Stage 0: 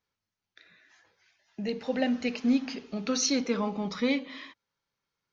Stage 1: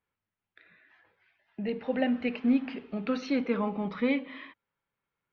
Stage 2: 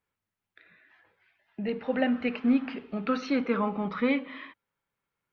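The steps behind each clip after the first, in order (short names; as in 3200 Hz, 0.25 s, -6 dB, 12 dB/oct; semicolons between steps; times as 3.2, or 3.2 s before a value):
LPF 2900 Hz 24 dB/oct
dynamic EQ 1300 Hz, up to +7 dB, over -52 dBFS, Q 2.1; gain +1 dB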